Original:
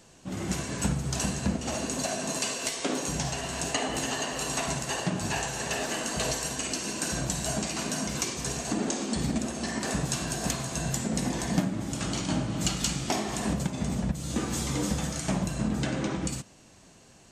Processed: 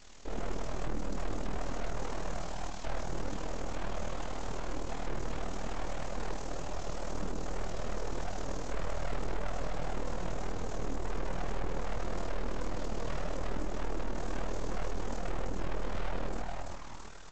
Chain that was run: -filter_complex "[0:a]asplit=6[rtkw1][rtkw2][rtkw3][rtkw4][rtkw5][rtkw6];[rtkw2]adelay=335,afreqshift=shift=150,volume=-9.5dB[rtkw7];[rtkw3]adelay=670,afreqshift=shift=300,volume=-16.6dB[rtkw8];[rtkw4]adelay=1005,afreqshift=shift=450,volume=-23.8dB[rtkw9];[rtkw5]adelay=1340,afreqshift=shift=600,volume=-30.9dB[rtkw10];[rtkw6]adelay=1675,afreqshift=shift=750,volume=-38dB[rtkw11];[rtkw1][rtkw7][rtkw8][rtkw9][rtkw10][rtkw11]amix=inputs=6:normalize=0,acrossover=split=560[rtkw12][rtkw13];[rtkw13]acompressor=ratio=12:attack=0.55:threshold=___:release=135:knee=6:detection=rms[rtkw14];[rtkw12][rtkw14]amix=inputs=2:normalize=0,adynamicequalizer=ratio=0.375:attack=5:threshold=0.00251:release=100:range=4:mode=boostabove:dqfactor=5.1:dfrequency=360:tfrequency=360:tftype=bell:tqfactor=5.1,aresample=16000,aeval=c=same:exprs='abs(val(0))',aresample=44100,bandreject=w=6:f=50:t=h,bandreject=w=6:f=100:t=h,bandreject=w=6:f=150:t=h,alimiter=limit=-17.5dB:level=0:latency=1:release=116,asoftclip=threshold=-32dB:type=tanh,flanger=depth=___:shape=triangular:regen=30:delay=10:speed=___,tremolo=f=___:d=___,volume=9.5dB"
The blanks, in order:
-44dB, 7.4, 1.8, 39, 0.621